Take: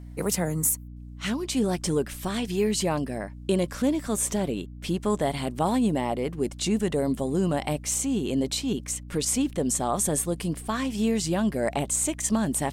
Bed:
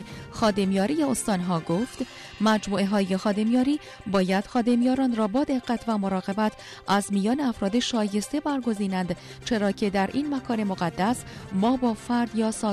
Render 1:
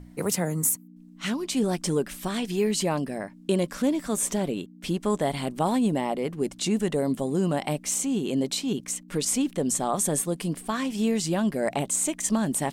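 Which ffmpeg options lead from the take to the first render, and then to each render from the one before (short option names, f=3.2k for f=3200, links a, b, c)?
-af "bandreject=f=60:t=h:w=6,bandreject=f=120:t=h:w=6"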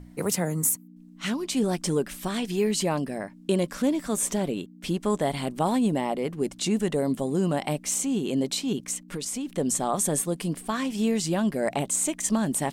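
-filter_complex "[0:a]asettb=1/sr,asplit=3[a][b][c];[a]atrim=end=9.094[d];[b]atrim=start=9.09:end=9.57,asetpts=PTS-STARTPTS,afade=t=in:d=0.004:c=qsin,afade=t=out:st=0.476:d=0.004:c=qsin,acompressor=threshold=-29dB:ratio=4:attack=3.2:release=140:knee=1:detection=peak[e];[c]atrim=start=9.566[f];[d][e]acrossfade=d=0.004:c1=hsin:c2=qsin[g];[g][f]acrossfade=d=0.004:c1=qsin:c2=hsin"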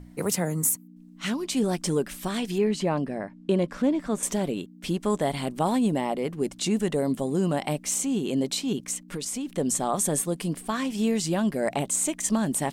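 -filter_complex "[0:a]asettb=1/sr,asplit=3[a][b][c];[a]atrim=end=2.584[d];[b]atrim=start=2.58:end=4.23,asetpts=PTS-STARTPTS,afade=t=in:d=0.004:c=qsin,afade=t=out:st=1.646:d=0.004:c=qsin,aemphasis=mode=reproduction:type=75fm[e];[c]atrim=start=4.226[f];[d][e]acrossfade=d=0.004:c1=hsin:c2=qsin[g];[g][f]acrossfade=d=0.004:c1=qsin:c2=hsin"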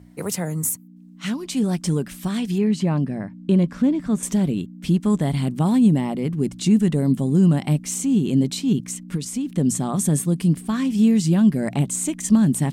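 -af "highpass=71,asubboost=boost=7.5:cutoff=200"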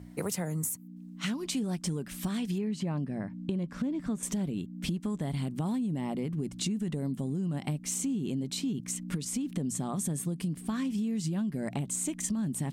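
-af "alimiter=limit=-14dB:level=0:latency=1:release=75,acompressor=threshold=-30dB:ratio=6"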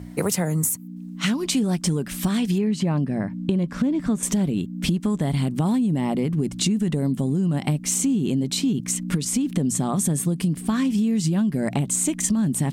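-af "volume=10dB"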